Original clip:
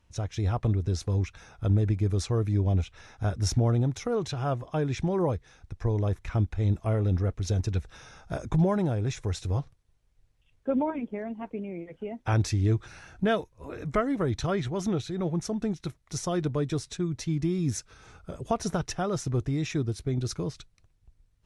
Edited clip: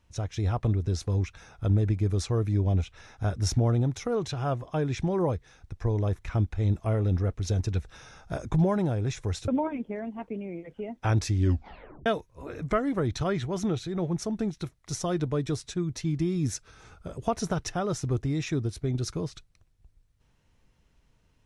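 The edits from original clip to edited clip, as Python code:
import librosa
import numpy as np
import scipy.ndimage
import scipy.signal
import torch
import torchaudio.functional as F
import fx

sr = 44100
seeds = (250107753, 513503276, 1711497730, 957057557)

y = fx.edit(x, sr, fx.cut(start_s=9.48, length_s=1.23),
    fx.tape_stop(start_s=12.61, length_s=0.68), tone=tone)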